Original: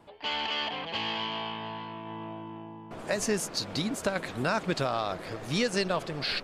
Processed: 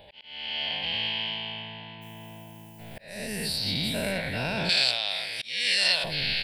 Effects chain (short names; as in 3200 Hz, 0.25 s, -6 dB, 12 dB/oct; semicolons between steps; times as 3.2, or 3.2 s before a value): spectral dilation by 0.24 s; bell 350 Hz -13.5 dB 1.1 oct; fixed phaser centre 2900 Hz, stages 4; 2.01–3.01 added noise violet -56 dBFS; auto swell 0.52 s; 4.69–6.04 weighting filter ITU-R 468; outdoor echo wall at 29 m, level -28 dB